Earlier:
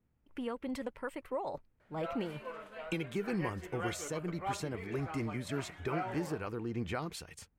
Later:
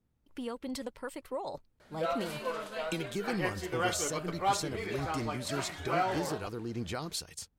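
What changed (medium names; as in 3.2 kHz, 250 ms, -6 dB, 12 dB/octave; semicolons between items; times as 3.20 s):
background +9.0 dB; master: add resonant high shelf 3.2 kHz +8 dB, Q 1.5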